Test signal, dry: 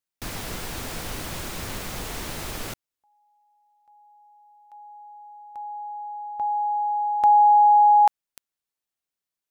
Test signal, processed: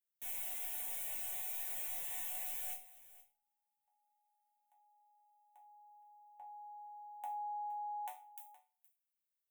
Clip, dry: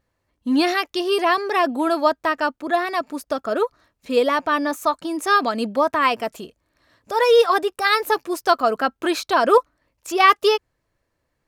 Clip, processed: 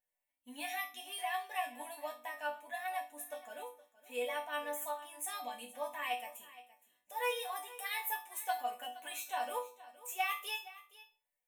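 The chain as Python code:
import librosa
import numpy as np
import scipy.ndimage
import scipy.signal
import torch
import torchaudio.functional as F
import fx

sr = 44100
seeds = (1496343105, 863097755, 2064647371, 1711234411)

y = fx.riaa(x, sr, side='recording')
y = fx.fixed_phaser(y, sr, hz=1300.0, stages=6)
y = fx.resonator_bank(y, sr, root=59, chord='minor', decay_s=0.3)
y = y + 10.0 ** (-18.0 / 20.0) * np.pad(y, (int(468 * sr / 1000.0), 0))[:len(y)]
y = fx.room_shoebox(y, sr, seeds[0], volume_m3=550.0, walls='furnished', distance_m=0.47)
y = y * librosa.db_to_amplitude(1.0)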